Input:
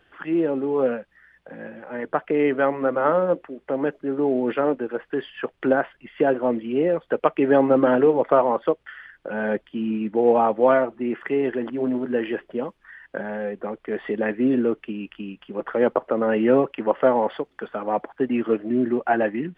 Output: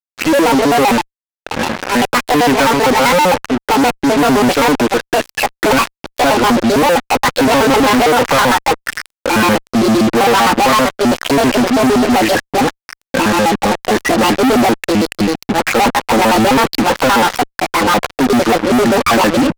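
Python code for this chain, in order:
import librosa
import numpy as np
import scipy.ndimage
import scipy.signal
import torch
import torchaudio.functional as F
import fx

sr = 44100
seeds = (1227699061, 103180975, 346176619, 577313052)

y = fx.pitch_trill(x, sr, semitones=8.5, every_ms=65)
y = fx.graphic_eq_31(y, sr, hz=(100, 250, 400, 630, 3150), db=(7, 5, -5, -6, -7))
y = fx.fuzz(y, sr, gain_db=42.0, gate_db=-38.0)
y = y * librosa.db_to_amplitude(4.0)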